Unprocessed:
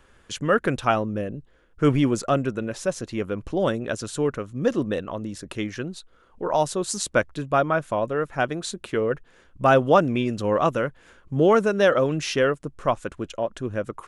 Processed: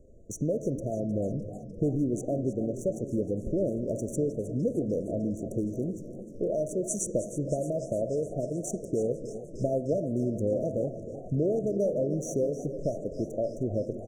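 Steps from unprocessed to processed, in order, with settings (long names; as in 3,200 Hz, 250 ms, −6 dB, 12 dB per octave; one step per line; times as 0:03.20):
adaptive Wiener filter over 9 samples
downward compressor 4 to 1, threshold −30 dBFS, peak gain reduction 15.5 dB
linear-phase brick-wall band-stop 690–5,700 Hz
repeating echo 318 ms, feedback 56%, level −16 dB
on a send at −10.5 dB: convolution reverb RT60 0.95 s, pre-delay 5 ms
on the sum: feedback echo with a swinging delay time 305 ms, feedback 77%, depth 124 cents, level −16 dB
level +3.5 dB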